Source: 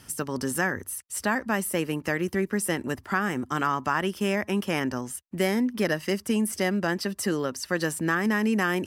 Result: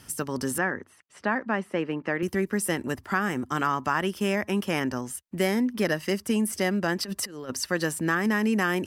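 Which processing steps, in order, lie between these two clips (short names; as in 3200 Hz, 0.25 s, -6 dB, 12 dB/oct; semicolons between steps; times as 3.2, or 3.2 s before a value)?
0.58–2.23 BPF 170–2500 Hz; 6.99–7.66 negative-ratio compressor -32 dBFS, ratio -0.5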